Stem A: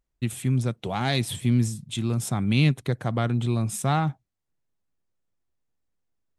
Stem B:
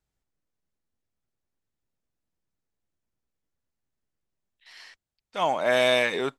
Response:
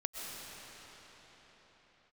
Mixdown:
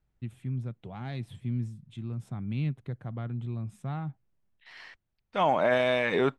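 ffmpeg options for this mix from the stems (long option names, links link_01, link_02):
-filter_complex "[0:a]volume=-15.5dB[link_01];[1:a]volume=2.5dB[link_02];[link_01][link_02]amix=inputs=2:normalize=0,bass=frequency=250:gain=7,treble=frequency=4000:gain=-15,alimiter=limit=-14.5dB:level=0:latency=1:release=71"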